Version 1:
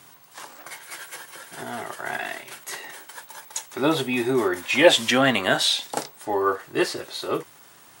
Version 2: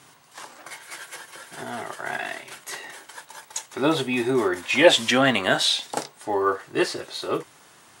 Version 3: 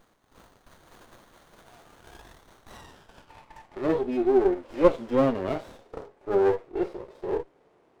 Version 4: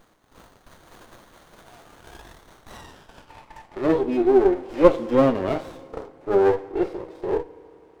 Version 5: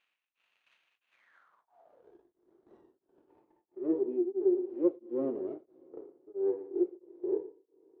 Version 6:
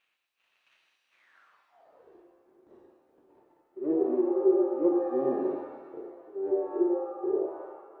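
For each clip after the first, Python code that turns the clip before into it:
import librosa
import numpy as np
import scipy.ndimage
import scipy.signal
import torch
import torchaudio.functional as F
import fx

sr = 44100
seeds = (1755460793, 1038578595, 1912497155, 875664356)

y1 = scipy.signal.sosfilt(scipy.signal.butter(2, 11000.0, 'lowpass', fs=sr, output='sos'), x)
y2 = fx.filter_sweep_bandpass(y1, sr, from_hz=7200.0, to_hz=460.0, start_s=2.38, end_s=4.0, q=1.9)
y2 = fx.hpss(y2, sr, part='percussive', gain_db=-14)
y2 = fx.running_max(y2, sr, window=17)
y2 = y2 * 10.0 ** (5.5 / 20.0)
y3 = fx.rev_fdn(y2, sr, rt60_s=2.6, lf_ratio=1.0, hf_ratio=0.75, size_ms=19.0, drr_db=17.5)
y3 = y3 * 10.0 ** (4.5 / 20.0)
y4 = fx.filter_sweep_bandpass(y3, sr, from_hz=2600.0, to_hz=360.0, start_s=1.1, end_s=2.17, q=6.7)
y4 = y4 + 10.0 ** (-15.0 / 20.0) * np.pad(y4, (int(117 * sr / 1000.0), 0))[:len(y4)]
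y4 = y4 * np.abs(np.cos(np.pi * 1.5 * np.arange(len(y4)) / sr))
y4 = y4 * 10.0 ** (-1.5 / 20.0)
y5 = fx.rev_shimmer(y4, sr, seeds[0], rt60_s=1.2, semitones=7, shimmer_db=-8, drr_db=2.0)
y5 = y5 * 10.0 ** (1.5 / 20.0)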